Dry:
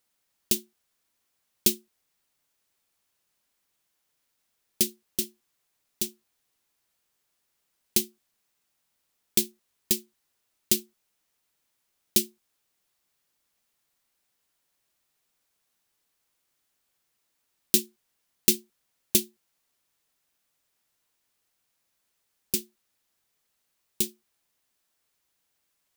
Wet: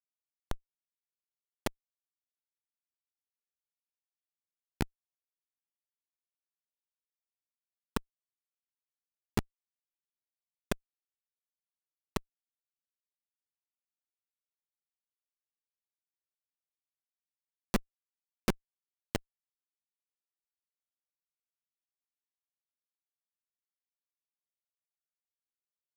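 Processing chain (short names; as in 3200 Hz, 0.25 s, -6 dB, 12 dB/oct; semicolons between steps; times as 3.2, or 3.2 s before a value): in parallel at -0.5 dB: limiter -13.5 dBFS, peak gain reduction 10 dB; on the sum: added harmonics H 4 -12 dB, 6 -20 dB, 7 -24 dB, 8 -42 dB, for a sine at -0.5 dBFS; bell 190 Hz +5 dB 0.85 oct; Schmitt trigger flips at -8.5 dBFS; gain +10.5 dB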